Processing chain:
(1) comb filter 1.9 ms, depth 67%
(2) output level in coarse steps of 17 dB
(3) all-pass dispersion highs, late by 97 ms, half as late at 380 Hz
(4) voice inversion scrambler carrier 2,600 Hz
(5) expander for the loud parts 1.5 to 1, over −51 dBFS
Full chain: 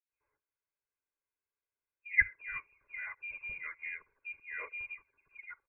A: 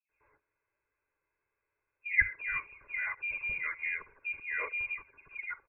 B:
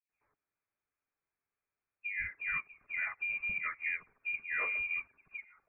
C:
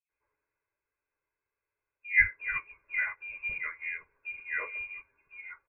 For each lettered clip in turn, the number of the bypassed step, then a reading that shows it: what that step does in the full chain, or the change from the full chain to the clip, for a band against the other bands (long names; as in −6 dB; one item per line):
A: 5, change in crest factor −3.5 dB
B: 1, change in crest factor −12.0 dB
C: 2, change in crest factor −2.0 dB